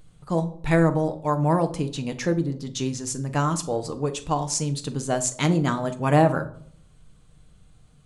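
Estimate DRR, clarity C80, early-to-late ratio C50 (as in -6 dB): 7.0 dB, 19.5 dB, 15.0 dB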